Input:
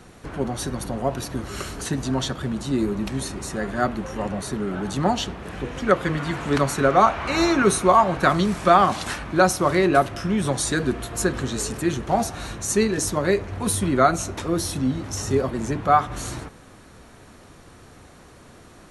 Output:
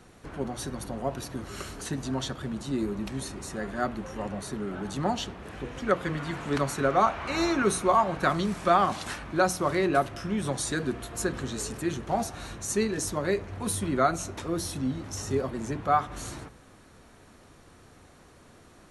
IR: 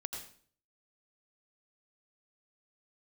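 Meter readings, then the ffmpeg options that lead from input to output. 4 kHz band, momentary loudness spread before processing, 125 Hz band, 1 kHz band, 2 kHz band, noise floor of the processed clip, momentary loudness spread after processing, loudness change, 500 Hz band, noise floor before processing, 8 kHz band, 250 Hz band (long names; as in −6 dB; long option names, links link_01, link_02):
−6.5 dB, 12 LU, −7.0 dB, −6.5 dB, −6.5 dB, −55 dBFS, 12 LU, −6.5 dB, −6.5 dB, −48 dBFS, −6.5 dB, −6.5 dB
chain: -af "bandreject=frequency=60:width_type=h:width=6,bandreject=frequency=120:width_type=h:width=6,bandreject=frequency=180:width_type=h:width=6,volume=-6.5dB"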